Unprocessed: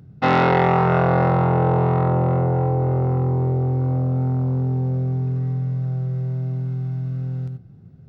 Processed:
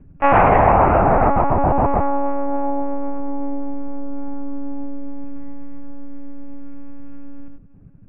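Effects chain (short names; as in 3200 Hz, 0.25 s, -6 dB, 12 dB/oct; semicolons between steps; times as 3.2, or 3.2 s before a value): monotone LPC vocoder at 8 kHz 280 Hz; elliptic low-pass 2600 Hz, stop band 60 dB; dynamic EQ 850 Hz, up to +7 dB, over -34 dBFS, Q 1.2; gain +1 dB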